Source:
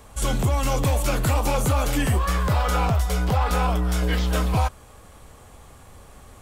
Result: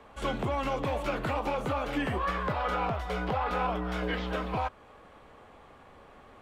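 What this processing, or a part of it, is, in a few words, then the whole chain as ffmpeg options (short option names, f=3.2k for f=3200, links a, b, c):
DJ mixer with the lows and highs turned down: -filter_complex "[0:a]acrossover=split=200 3500:gain=0.224 1 0.0708[a][b][c];[a][b][c]amix=inputs=3:normalize=0,alimiter=limit=-18dB:level=0:latency=1:release=268,volume=-2dB"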